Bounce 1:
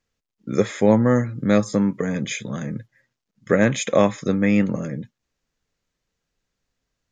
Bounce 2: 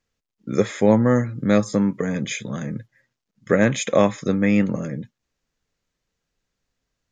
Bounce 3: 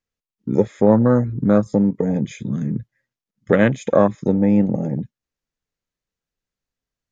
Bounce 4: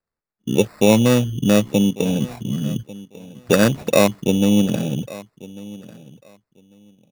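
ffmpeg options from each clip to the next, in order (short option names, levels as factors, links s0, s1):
-af anull
-filter_complex "[0:a]afwtdn=0.0631,asplit=2[s0][s1];[s1]acompressor=threshold=0.0501:ratio=6,volume=1.26[s2];[s0][s2]amix=inputs=2:normalize=0"
-af "acrusher=samples=14:mix=1:aa=0.000001,aecho=1:1:1146|2292:0.106|0.0191"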